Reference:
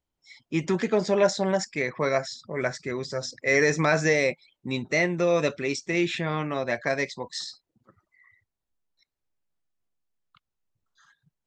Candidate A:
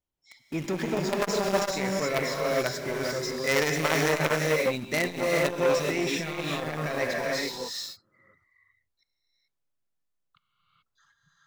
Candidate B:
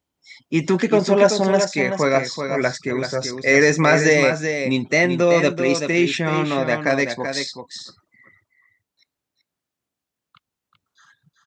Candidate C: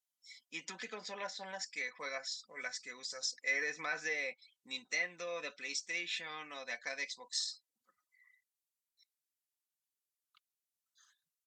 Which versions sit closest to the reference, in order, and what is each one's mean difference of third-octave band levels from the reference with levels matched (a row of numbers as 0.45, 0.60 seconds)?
B, C, A; 4.5, 7.5, 12.5 decibels